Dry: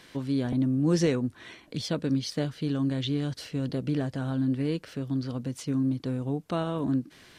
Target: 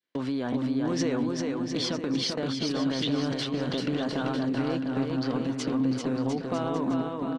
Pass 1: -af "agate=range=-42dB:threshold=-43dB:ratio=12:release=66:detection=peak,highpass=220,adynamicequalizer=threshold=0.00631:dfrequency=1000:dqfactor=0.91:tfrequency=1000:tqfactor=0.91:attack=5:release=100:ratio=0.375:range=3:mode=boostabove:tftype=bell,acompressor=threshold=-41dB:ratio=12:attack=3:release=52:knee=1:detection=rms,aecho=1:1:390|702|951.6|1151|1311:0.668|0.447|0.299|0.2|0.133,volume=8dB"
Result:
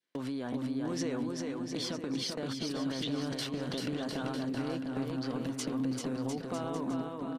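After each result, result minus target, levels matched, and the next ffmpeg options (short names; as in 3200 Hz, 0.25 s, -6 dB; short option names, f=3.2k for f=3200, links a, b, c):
compressor: peak gain reduction +7 dB; 8000 Hz band +4.0 dB
-af "agate=range=-42dB:threshold=-43dB:ratio=12:release=66:detection=peak,highpass=220,adynamicequalizer=threshold=0.00631:dfrequency=1000:dqfactor=0.91:tfrequency=1000:tqfactor=0.91:attack=5:release=100:ratio=0.375:range=3:mode=boostabove:tftype=bell,acompressor=threshold=-33.5dB:ratio=12:attack=3:release=52:knee=1:detection=rms,aecho=1:1:390|702|951.6|1151|1311:0.668|0.447|0.299|0.2|0.133,volume=8dB"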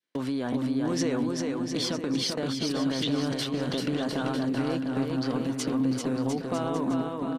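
8000 Hz band +3.0 dB
-af "agate=range=-42dB:threshold=-43dB:ratio=12:release=66:detection=peak,highpass=220,adynamicequalizer=threshold=0.00631:dfrequency=1000:dqfactor=0.91:tfrequency=1000:tqfactor=0.91:attack=5:release=100:ratio=0.375:range=3:mode=boostabove:tftype=bell,lowpass=5.8k,acompressor=threshold=-33.5dB:ratio=12:attack=3:release=52:knee=1:detection=rms,aecho=1:1:390|702|951.6|1151|1311:0.668|0.447|0.299|0.2|0.133,volume=8dB"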